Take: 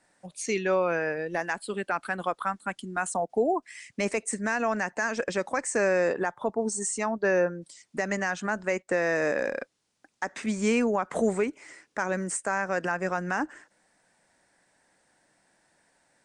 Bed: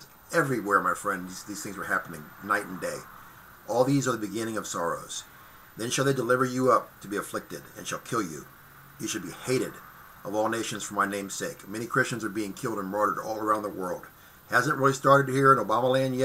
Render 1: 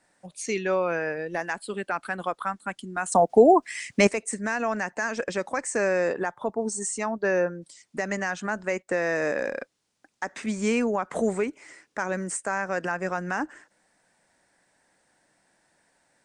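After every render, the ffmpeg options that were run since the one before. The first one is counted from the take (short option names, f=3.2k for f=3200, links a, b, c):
-filter_complex "[0:a]asplit=3[a][b][c];[a]atrim=end=3.122[d];[b]atrim=start=3.118:end=4.072,asetpts=PTS-STARTPTS,volume=9.5dB[e];[c]atrim=start=4.068[f];[d][e]acrossfade=d=0.004:c1=hsin:c2=hsin[g];[g][f]acrossfade=d=0.004:c1=hsin:c2=hsin"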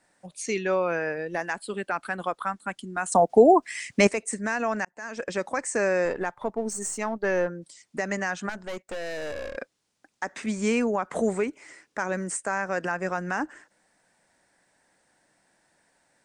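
-filter_complex "[0:a]asettb=1/sr,asplit=3[a][b][c];[a]atrim=end=6.054[d];[b]atrim=start=6.05:end=7.48,asetpts=PTS-STARTPTS,afade=t=in:d=0.004:c=qsin,afade=t=out:st=1.426:d=0.004:c=qsin,aeval=exprs='if(lt(val(0),0),0.708*val(0),val(0))':c=same[e];[c]atrim=start=7.476[f];[d][e]acrossfade=d=0.004:c1=hsin:c2=qsin[g];[g][f]acrossfade=d=0.004:c1=qsin:c2=hsin,asettb=1/sr,asplit=3[h][i][j];[h]atrim=end=8.494[k];[i]atrim=start=8.49:end=9.57,asetpts=PTS-STARTPTS,afade=t=in:d=0.004:c=qsin,afade=t=out:st=1.076:d=0.004:c=qsin,aeval=exprs='(tanh(35.5*val(0)+0.55)-tanh(0.55))/35.5':c=same[l];[j]atrim=start=9.566[m];[k][l]acrossfade=d=0.004:c1=hsin:c2=qsin[n];[n][m]acrossfade=d=0.004:c1=qsin:c2=hsin,asplit=2[o][p];[o]atrim=end=4.85,asetpts=PTS-STARTPTS,afade=t=out:st=4.846:d=0.004:c=hsin[q];[p]atrim=start=4.85,asetpts=PTS-STARTPTS,afade=t=in:d=0.54[r];[q][r]concat=n=2:v=0:a=1"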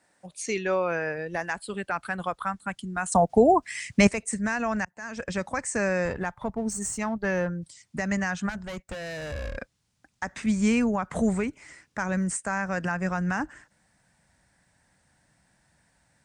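-af "highpass=45,asubboost=boost=9.5:cutoff=120"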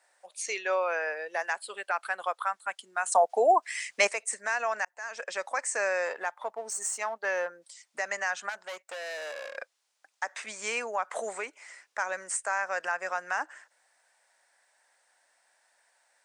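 -af "highpass=f=530:w=0.5412,highpass=f=530:w=1.3066"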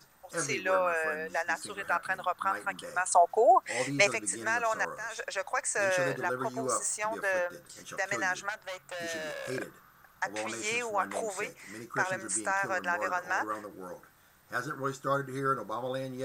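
-filter_complex "[1:a]volume=-11dB[a];[0:a][a]amix=inputs=2:normalize=0"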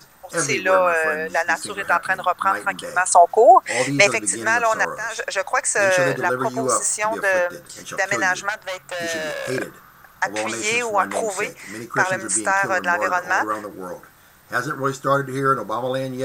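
-af "volume=11dB,alimiter=limit=-1dB:level=0:latency=1"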